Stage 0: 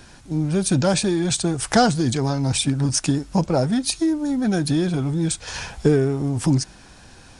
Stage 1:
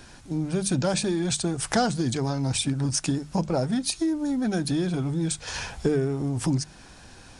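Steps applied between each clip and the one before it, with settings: hum notches 50/100/150/200 Hz; compression 1.5:1, threshold -26 dBFS, peak gain reduction 6 dB; trim -1.5 dB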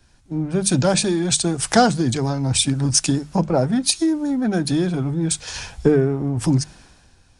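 three bands expanded up and down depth 70%; trim +6 dB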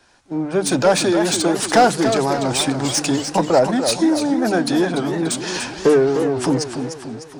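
overdrive pedal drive 19 dB, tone 1 kHz, clips at -1 dBFS; tone controls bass -8 dB, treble +6 dB; modulated delay 296 ms, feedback 52%, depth 179 cents, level -8 dB

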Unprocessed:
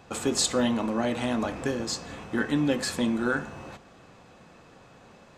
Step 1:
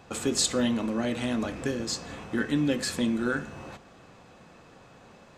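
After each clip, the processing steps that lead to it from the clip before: dynamic bell 870 Hz, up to -7 dB, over -43 dBFS, Q 1.3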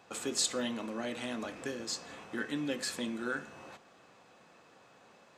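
high-pass 410 Hz 6 dB/octave; trim -5 dB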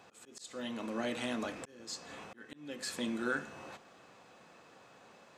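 slow attack 594 ms; trim +1.5 dB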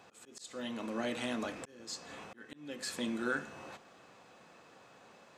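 no audible change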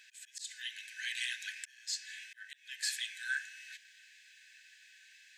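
brick-wall FIR high-pass 1.5 kHz; trim +5.5 dB

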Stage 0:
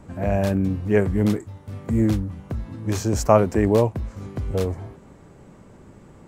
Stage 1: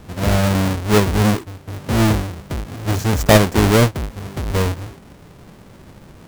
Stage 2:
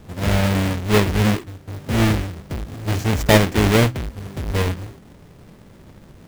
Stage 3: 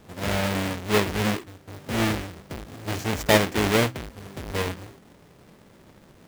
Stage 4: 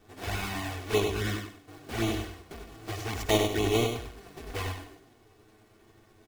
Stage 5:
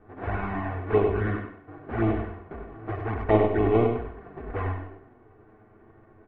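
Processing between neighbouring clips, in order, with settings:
square wave that keeps the level
de-hum 62.59 Hz, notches 6; dynamic bell 2.5 kHz, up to +6 dB, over -35 dBFS, Q 0.88; in parallel at -5 dB: sample-rate reducer 1.5 kHz; on the sum: trim -5.5 dB
bass shelf 160 Hz -11 dB; trim -3 dB
comb 2.7 ms, depth 66%; touch-sensitive flanger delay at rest 10.3 ms, full sweep at -17.5 dBFS; on a send: feedback delay 97 ms, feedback 25%, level -6 dB; on the sum: trim -5.5 dB
low-pass 1.7 kHz 24 dB/octave; on a send at -11 dB: reverberation RT60 0.60 s, pre-delay 46 ms; on the sum: trim +5 dB

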